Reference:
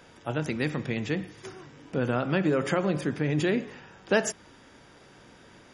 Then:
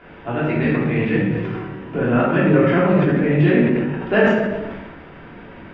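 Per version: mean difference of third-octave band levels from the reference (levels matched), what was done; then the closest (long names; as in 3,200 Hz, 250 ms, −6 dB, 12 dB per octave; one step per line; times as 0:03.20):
7.5 dB: in parallel at −2.5 dB: downward compressor, threshold −39 dBFS, peak gain reduction 19.5 dB
on the sum: low-pass filter 2,700 Hz 24 dB per octave
rectangular room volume 490 cubic metres, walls mixed, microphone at 3.2 metres
level that may fall only so fast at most 37 dB per second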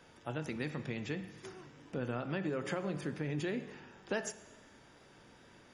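3.0 dB: downward compressor 2 to 1, threshold −29 dBFS, peak gain reduction 6.5 dB
tape wow and flutter 20 cents
tuned comb filter 880 Hz, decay 0.38 s
dense smooth reverb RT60 1.5 s, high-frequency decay 0.9×, DRR 14 dB
level +1 dB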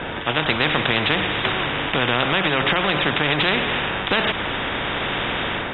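12.0 dB: Chebyshev low-pass filter 3,700 Hz, order 10
automatic gain control gain up to 10.5 dB
brickwall limiter −9.5 dBFS, peak gain reduction 7.5 dB
every bin compressed towards the loudest bin 4 to 1
level +6 dB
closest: second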